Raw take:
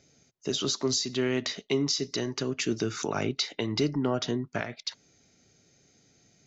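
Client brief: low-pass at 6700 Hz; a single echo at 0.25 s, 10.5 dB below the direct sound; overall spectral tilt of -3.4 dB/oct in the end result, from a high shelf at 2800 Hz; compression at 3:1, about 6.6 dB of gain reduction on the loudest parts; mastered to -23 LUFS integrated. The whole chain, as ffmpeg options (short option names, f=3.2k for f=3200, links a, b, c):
-af "lowpass=6.7k,highshelf=f=2.8k:g=4.5,acompressor=threshold=-31dB:ratio=3,aecho=1:1:250:0.299,volume=10.5dB"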